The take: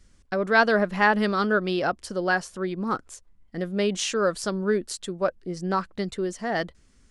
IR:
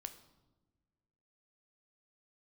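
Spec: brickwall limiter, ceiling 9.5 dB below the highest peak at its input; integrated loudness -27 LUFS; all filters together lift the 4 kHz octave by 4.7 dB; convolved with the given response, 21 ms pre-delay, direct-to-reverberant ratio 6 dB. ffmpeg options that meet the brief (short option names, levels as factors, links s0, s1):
-filter_complex "[0:a]equalizer=f=4000:t=o:g=6,alimiter=limit=0.178:level=0:latency=1,asplit=2[s0][s1];[1:a]atrim=start_sample=2205,adelay=21[s2];[s1][s2]afir=irnorm=-1:irlink=0,volume=0.794[s3];[s0][s3]amix=inputs=2:normalize=0,volume=0.891"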